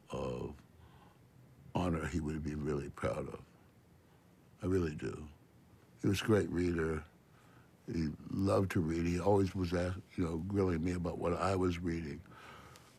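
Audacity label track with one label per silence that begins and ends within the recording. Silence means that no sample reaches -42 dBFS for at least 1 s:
0.520000	1.750000	silence
3.360000	4.630000	silence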